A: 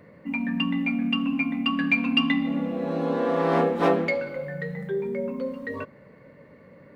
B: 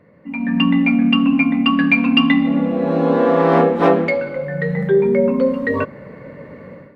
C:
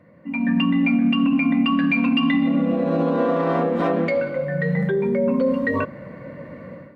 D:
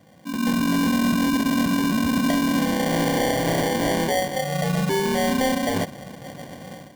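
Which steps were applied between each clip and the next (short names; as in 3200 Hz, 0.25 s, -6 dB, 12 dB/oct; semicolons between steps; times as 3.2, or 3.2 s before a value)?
high shelf 4100 Hz -10.5 dB; AGC gain up to 16 dB; gain -1 dB
limiter -11.5 dBFS, peak gain reduction 9 dB; notch comb 430 Hz
sample-rate reducer 1300 Hz, jitter 0%; in parallel at -11.5 dB: wrapped overs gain 14.5 dB; on the sum: gain -3 dB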